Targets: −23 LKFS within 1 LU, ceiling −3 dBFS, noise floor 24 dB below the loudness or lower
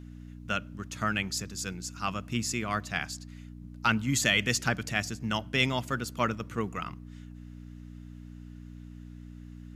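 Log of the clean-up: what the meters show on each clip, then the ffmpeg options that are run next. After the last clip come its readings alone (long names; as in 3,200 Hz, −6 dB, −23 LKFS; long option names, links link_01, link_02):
mains hum 60 Hz; hum harmonics up to 300 Hz; level of the hum −42 dBFS; integrated loudness −30.5 LKFS; sample peak −11.5 dBFS; target loudness −23.0 LKFS
→ -af "bandreject=frequency=60:width_type=h:width=4,bandreject=frequency=120:width_type=h:width=4,bandreject=frequency=180:width_type=h:width=4,bandreject=frequency=240:width_type=h:width=4,bandreject=frequency=300:width_type=h:width=4"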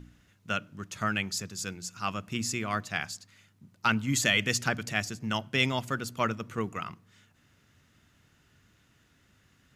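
mains hum none found; integrated loudness −30.5 LKFS; sample peak −11.5 dBFS; target loudness −23.0 LKFS
→ -af "volume=7.5dB"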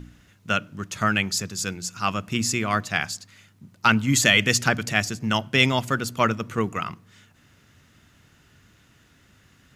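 integrated loudness −23.0 LKFS; sample peak −4.0 dBFS; background noise floor −58 dBFS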